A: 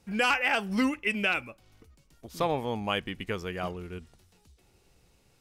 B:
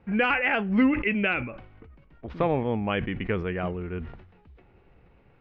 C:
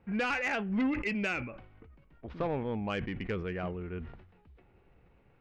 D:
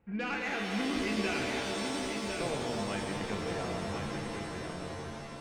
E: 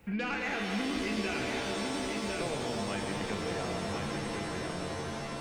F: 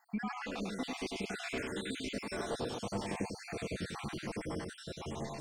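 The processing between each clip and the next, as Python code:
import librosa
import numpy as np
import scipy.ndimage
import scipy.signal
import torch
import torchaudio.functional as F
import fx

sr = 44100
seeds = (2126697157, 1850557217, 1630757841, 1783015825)

y1 = scipy.signal.sosfilt(scipy.signal.butter(4, 2300.0, 'lowpass', fs=sr, output='sos'), x)
y1 = fx.dynamic_eq(y1, sr, hz=980.0, q=0.87, threshold_db=-42.0, ratio=4.0, max_db=-7)
y1 = fx.sustainer(y1, sr, db_per_s=73.0)
y1 = y1 * 10.0 ** (6.5 / 20.0)
y2 = 10.0 ** (-18.5 / 20.0) * np.tanh(y1 / 10.0 ** (-18.5 / 20.0))
y2 = y2 * 10.0 ** (-5.5 / 20.0)
y3 = y2 + 10.0 ** (-5.5 / 20.0) * np.pad(y2, (int(1053 * sr / 1000.0), 0))[:len(y2)]
y3 = fx.rev_shimmer(y3, sr, seeds[0], rt60_s=3.8, semitones=7, shimmer_db=-2, drr_db=0.5)
y3 = y3 * 10.0 ** (-5.5 / 20.0)
y4 = fx.band_squash(y3, sr, depth_pct=70)
y5 = fx.spec_dropout(y4, sr, seeds[1], share_pct=66)
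y5 = y5 + 10.0 ** (-3.5 / 20.0) * np.pad(y5, (int(99 * sr / 1000.0), 0))[:len(y5)]
y5 = fx.filter_lfo_notch(y5, sr, shape='saw_down', hz=0.47, low_hz=490.0, high_hz=3500.0, q=2.1)
y5 = y5 * 10.0 ** (-1.5 / 20.0)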